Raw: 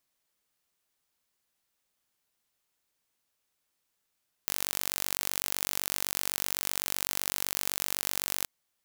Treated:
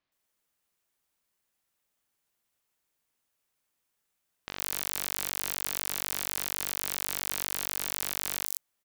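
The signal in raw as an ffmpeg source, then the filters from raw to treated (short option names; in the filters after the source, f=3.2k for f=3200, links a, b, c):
-f lavfi -i "aevalsrc='0.668*eq(mod(n,921),0)':d=3.98:s=44100"
-filter_complex "[0:a]acrossover=split=4500[a][b];[b]adelay=120[c];[a][c]amix=inputs=2:normalize=0"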